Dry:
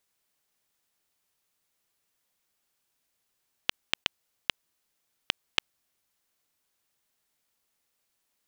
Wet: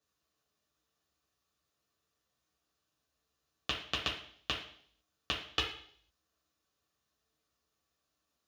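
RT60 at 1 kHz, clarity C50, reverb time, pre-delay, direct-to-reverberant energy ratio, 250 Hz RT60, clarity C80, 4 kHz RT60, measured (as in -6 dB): 0.55 s, 7.0 dB, 0.60 s, 3 ms, -3.0 dB, 0.65 s, 10.5 dB, 0.65 s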